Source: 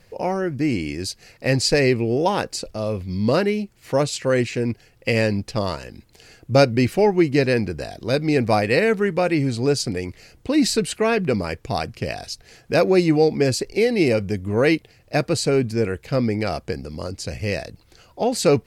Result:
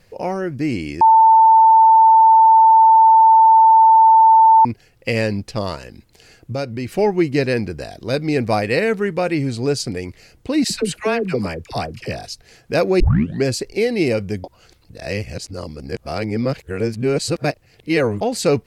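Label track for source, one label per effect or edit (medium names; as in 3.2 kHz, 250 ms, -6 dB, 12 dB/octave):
1.010000	4.650000	bleep 892 Hz -6.5 dBFS
6.520000	6.970000	compression 2:1, threshold -28 dBFS
10.640000	12.260000	phase dispersion lows, late by 68 ms, half as late at 660 Hz
13.000000	13.000000	tape start 0.44 s
14.440000	18.210000	reverse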